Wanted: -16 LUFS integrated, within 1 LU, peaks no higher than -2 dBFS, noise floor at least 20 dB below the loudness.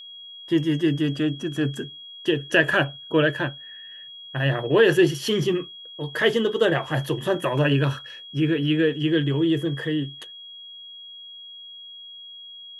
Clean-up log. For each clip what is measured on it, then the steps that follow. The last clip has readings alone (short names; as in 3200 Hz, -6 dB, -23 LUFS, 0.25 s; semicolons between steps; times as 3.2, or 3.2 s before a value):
steady tone 3300 Hz; tone level -39 dBFS; loudness -23.0 LUFS; peak -6.0 dBFS; loudness target -16.0 LUFS
-> notch 3300 Hz, Q 30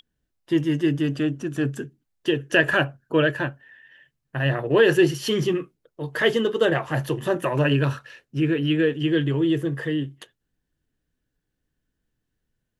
steady tone none; loudness -23.0 LUFS; peak -6.0 dBFS; loudness target -16.0 LUFS
-> gain +7 dB; limiter -2 dBFS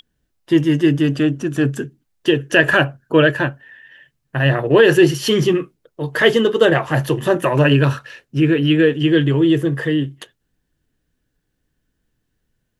loudness -16.0 LUFS; peak -2.0 dBFS; noise floor -72 dBFS